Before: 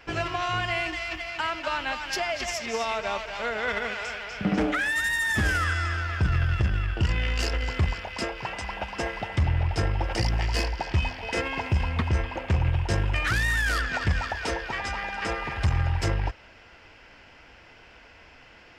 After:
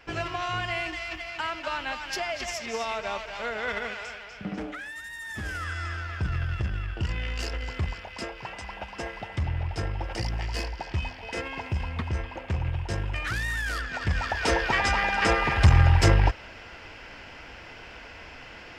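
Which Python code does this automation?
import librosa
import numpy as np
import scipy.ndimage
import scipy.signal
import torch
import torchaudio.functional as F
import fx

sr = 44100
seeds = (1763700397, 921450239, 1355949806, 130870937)

y = fx.gain(x, sr, db=fx.line((3.83, -2.5), (5.07, -14.5), (5.87, -5.0), (13.93, -5.0), (14.61, 7.0)))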